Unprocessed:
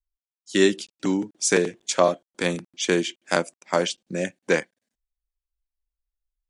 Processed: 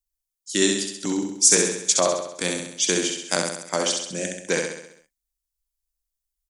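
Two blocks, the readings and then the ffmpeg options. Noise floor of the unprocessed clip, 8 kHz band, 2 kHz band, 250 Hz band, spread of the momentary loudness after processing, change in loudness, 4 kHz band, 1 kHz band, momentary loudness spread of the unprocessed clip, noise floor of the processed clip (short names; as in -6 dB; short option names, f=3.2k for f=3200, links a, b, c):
under -85 dBFS, +10.0 dB, -1.0 dB, -1.5 dB, 11 LU, +2.5 dB, +4.5 dB, -2.0 dB, 7 LU, -85 dBFS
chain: -filter_complex "[0:a]bass=f=250:g=1,treble=f=4k:g=14,asplit=2[a][b];[b]aecho=0:1:66|132|198|264|330|396|462:0.631|0.341|0.184|0.0994|0.0537|0.029|0.0156[c];[a][c]amix=inputs=2:normalize=0,volume=-4dB"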